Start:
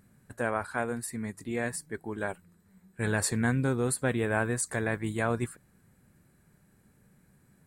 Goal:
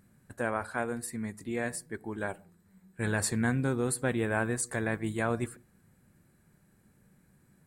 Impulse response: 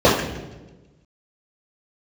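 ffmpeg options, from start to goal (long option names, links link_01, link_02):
-filter_complex "[0:a]asplit=2[link_01][link_02];[1:a]atrim=start_sample=2205,afade=type=out:start_time=0.18:duration=0.01,atrim=end_sample=8379,asetrate=30429,aresample=44100[link_03];[link_02][link_03]afir=irnorm=-1:irlink=0,volume=-48dB[link_04];[link_01][link_04]amix=inputs=2:normalize=0,volume=-1.5dB"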